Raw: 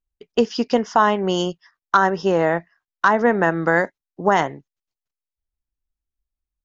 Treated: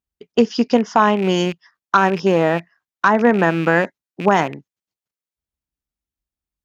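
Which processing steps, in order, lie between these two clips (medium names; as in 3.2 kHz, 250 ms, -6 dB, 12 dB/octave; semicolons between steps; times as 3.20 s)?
rattle on loud lows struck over -35 dBFS, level -22 dBFS; high-pass 63 Hz; peaking EQ 210 Hz +4.5 dB 1.4 oct; trim +1 dB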